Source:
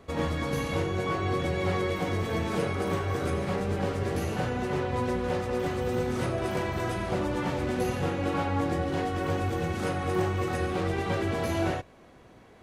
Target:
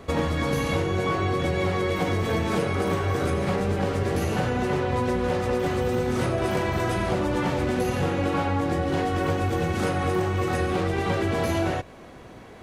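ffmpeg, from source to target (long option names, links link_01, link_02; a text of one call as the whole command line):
ffmpeg -i in.wav -af "acompressor=threshold=-30dB:ratio=6,volume=9dB" out.wav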